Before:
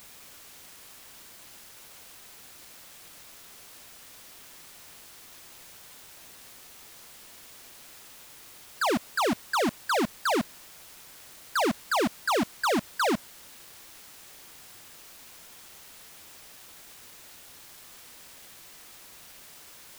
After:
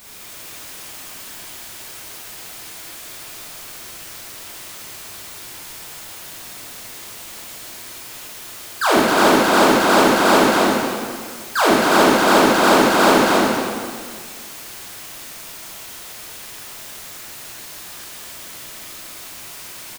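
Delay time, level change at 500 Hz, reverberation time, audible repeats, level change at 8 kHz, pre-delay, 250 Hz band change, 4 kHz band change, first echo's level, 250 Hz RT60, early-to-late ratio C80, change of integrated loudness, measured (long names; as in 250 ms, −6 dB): 267 ms, +14.5 dB, 1.9 s, 1, +13.5 dB, 7 ms, +14.0 dB, +13.5 dB, −4.0 dB, 1.9 s, −3.0 dB, +13.0 dB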